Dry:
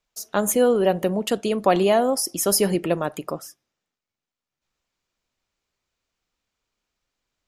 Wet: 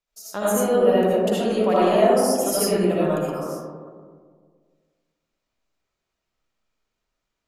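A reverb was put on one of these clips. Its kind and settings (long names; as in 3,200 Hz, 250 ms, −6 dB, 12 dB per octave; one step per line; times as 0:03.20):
comb and all-pass reverb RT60 1.8 s, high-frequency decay 0.3×, pre-delay 35 ms, DRR −8.5 dB
level −8.5 dB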